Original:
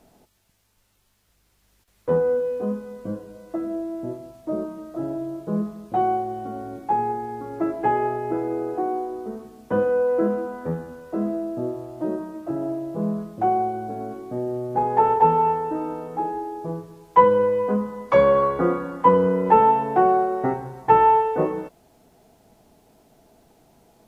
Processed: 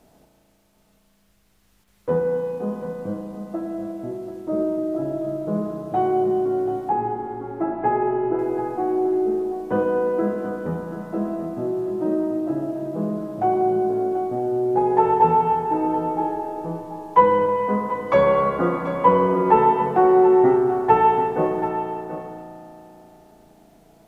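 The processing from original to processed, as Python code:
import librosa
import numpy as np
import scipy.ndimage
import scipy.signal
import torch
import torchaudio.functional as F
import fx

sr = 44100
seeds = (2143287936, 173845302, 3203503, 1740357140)

p1 = fx.lowpass(x, sr, hz=2000.0, slope=12, at=(6.89, 8.39))
p2 = p1 + fx.echo_single(p1, sr, ms=735, db=-11.5, dry=0)
y = fx.rev_spring(p2, sr, rt60_s=3.3, pass_ms=(35,), chirp_ms=35, drr_db=2.0)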